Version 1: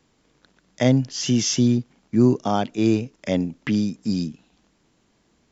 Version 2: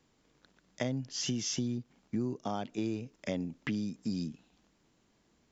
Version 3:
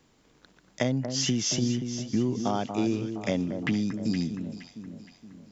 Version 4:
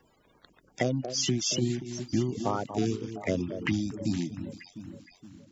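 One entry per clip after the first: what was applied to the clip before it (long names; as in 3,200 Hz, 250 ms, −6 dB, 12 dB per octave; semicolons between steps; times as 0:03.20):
downward compressor 6 to 1, threshold −24 dBFS, peak gain reduction 12.5 dB; level −6.5 dB
delay that swaps between a low-pass and a high-pass 234 ms, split 1,500 Hz, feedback 67%, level −7.5 dB; level +7 dB
spectral magnitudes quantised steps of 30 dB; reverb reduction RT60 0.56 s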